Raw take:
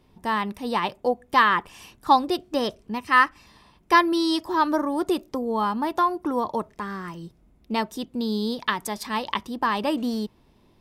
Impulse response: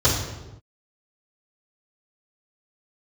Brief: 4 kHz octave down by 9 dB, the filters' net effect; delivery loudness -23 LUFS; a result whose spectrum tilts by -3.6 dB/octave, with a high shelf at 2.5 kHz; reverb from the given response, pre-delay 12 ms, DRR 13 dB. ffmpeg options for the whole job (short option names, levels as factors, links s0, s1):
-filter_complex "[0:a]highshelf=f=2500:g=-4,equalizer=f=4000:t=o:g=-8.5,asplit=2[s0][s1];[1:a]atrim=start_sample=2205,adelay=12[s2];[s1][s2]afir=irnorm=-1:irlink=0,volume=0.0282[s3];[s0][s3]amix=inputs=2:normalize=0,volume=1.26"